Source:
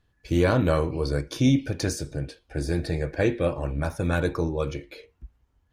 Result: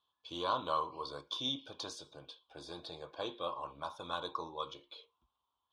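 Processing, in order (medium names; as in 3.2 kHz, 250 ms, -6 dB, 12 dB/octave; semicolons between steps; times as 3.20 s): dynamic bell 2.3 kHz, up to -4 dB, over -46 dBFS, Q 2.4; two resonant band-passes 1.9 kHz, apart 1.7 oct; trim +4 dB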